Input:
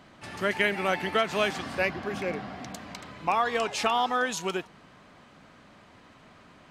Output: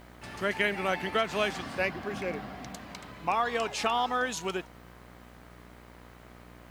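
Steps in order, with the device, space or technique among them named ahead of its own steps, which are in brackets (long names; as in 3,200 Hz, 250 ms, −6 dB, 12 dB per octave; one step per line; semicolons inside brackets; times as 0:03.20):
video cassette with head-switching buzz (hum with harmonics 60 Hz, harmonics 38, −50 dBFS −4 dB per octave; white noise bed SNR 35 dB)
level −2.5 dB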